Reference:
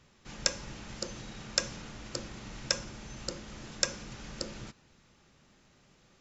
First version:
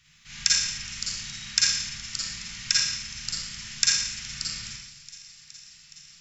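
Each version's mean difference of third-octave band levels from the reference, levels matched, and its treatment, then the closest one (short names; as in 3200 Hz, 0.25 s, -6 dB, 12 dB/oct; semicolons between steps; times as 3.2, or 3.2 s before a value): 10.5 dB: EQ curve 150 Hz 0 dB, 460 Hz -24 dB, 2000 Hz +10 dB; on a send: thin delay 0.418 s, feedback 80%, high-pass 2900 Hz, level -19.5 dB; on the sum: Schroeder reverb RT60 0.85 s, DRR -5 dB; gain -5 dB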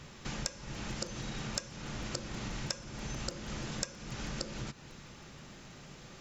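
7.5 dB: bell 140 Hz +4 dB 0.25 oct; compressor 6:1, threshold -48 dBFS, peak gain reduction 24.5 dB; crackling interface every 0.16 s, samples 256, repeat, from 0.74; gain +12 dB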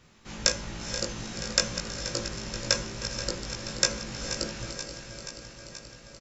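4.5 dB: regenerating reverse delay 0.24 s, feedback 83%, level -11 dB; doubler 18 ms -3 dB; diffused feedback echo 0.458 s, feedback 54%, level -12.5 dB; gain +3.5 dB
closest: third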